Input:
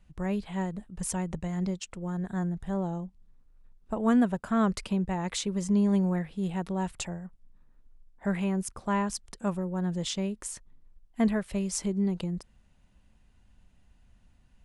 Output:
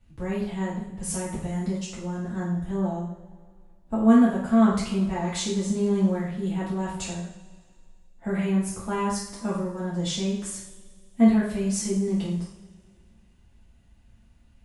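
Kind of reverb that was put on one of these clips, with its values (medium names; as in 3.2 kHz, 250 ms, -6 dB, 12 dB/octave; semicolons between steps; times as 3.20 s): two-slope reverb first 0.62 s, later 2.2 s, from -19 dB, DRR -9 dB; trim -6.5 dB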